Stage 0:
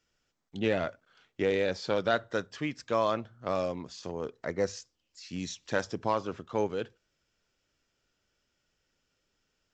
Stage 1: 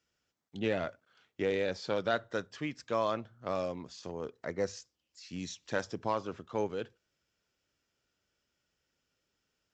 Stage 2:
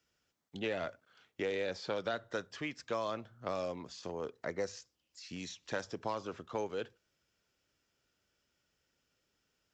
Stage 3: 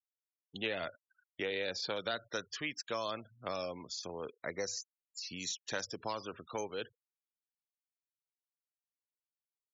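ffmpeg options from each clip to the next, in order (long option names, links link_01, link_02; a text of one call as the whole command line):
ffmpeg -i in.wav -af "highpass=49,volume=-3.5dB" out.wav
ffmpeg -i in.wav -filter_complex "[0:a]acrossover=split=390|3600[link_01][link_02][link_03];[link_01]acompressor=threshold=-46dB:ratio=4[link_04];[link_02]acompressor=threshold=-36dB:ratio=4[link_05];[link_03]acompressor=threshold=-51dB:ratio=4[link_06];[link_04][link_05][link_06]amix=inputs=3:normalize=0,volume=1.5dB" out.wav
ffmpeg -i in.wav -af "afftfilt=real='re*gte(hypot(re,im),0.00316)':imag='im*gte(hypot(re,im),0.00316)':win_size=1024:overlap=0.75,crystalizer=i=5:c=0,volume=-3dB" out.wav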